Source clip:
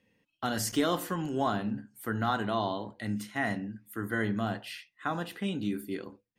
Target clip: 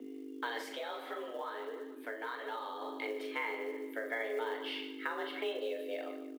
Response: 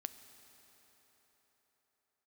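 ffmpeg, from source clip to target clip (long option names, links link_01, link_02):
-filter_complex "[0:a]equalizer=frequency=83:width_type=o:width=1.2:gain=-12.5,bandreject=frequency=60:width_type=h:width=6,bandreject=frequency=120:width_type=h:width=6,bandreject=frequency=180:width_type=h:width=6,bandreject=frequency=240:width_type=h:width=6,bandreject=frequency=300:width_type=h:width=6,bandreject=frequency=360:width_type=h:width=6,bandreject=frequency=420:width_type=h:width=6,asplit=2[link_01][link_02];[link_02]adelay=41,volume=-7dB[link_03];[link_01][link_03]amix=inputs=2:normalize=0,aecho=1:1:147|294|441:0.2|0.0718|0.0259,aeval=exprs='val(0)+0.00631*(sin(2*PI*50*n/s)+sin(2*PI*2*50*n/s)/2+sin(2*PI*3*50*n/s)/3+sin(2*PI*4*50*n/s)/4+sin(2*PI*5*50*n/s)/5)':channel_layout=same,afreqshift=220,acompressor=threshold=-35dB:ratio=5[link_04];[1:a]atrim=start_sample=2205,afade=type=out:start_time=0.36:duration=0.01,atrim=end_sample=16317,asetrate=70560,aresample=44100[link_05];[link_04][link_05]afir=irnorm=-1:irlink=0,asplit=3[link_06][link_07][link_08];[link_06]afade=type=out:start_time=0.73:duration=0.02[link_09];[link_07]flanger=delay=4.2:depth=8.4:regen=-21:speed=1.6:shape=sinusoidal,afade=type=in:start_time=0.73:duration=0.02,afade=type=out:start_time=2.8:duration=0.02[link_10];[link_08]afade=type=in:start_time=2.8:duration=0.02[link_11];[link_09][link_10][link_11]amix=inputs=3:normalize=0,highshelf=frequency=4700:width_type=q:width=1.5:gain=-14,acrusher=bits=7:mode=log:mix=0:aa=0.000001,volume=7dB"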